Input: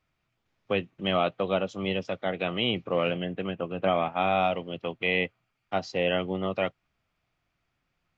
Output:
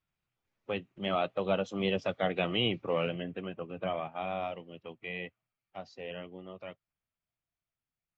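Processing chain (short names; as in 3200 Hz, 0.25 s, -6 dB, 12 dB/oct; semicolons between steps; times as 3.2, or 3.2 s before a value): bin magnitudes rounded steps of 15 dB; Doppler pass-by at 2.13, 7 m/s, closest 4.9 m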